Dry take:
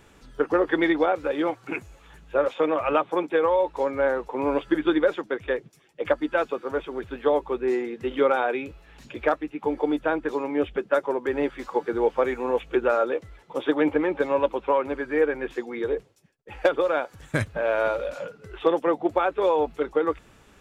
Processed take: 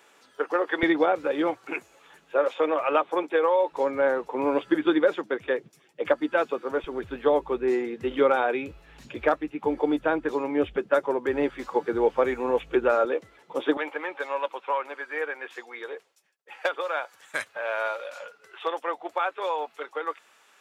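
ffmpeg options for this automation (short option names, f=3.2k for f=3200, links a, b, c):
-af "asetnsamples=n=441:p=0,asendcmd='0.83 highpass f 160;1.57 highpass f 340;3.72 highpass f 160;6.84 highpass f 48;13.05 highpass f 200;13.77 highpass f 840',highpass=520"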